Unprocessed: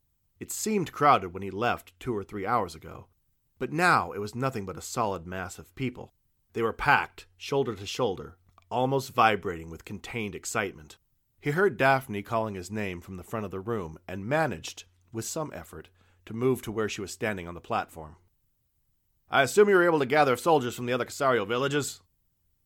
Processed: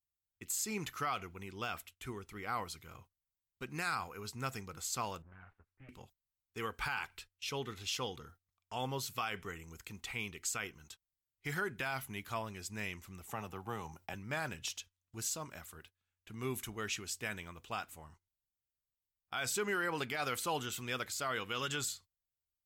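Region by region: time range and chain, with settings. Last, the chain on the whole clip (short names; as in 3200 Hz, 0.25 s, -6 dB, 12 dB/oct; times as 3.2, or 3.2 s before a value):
5.22–5.89 minimum comb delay 9.9 ms + LPF 1800 Hz 24 dB/oct + compressor 2.5:1, threshold -48 dBFS
13.29–14.14 bell 810 Hz +14.5 dB 0.33 oct + three-band squash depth 40%
whole clip: gate -49 dBFS, range -19 dB; passive tone stack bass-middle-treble 5-5-5; limiter -31.5 dBFS; gain +5.5 dB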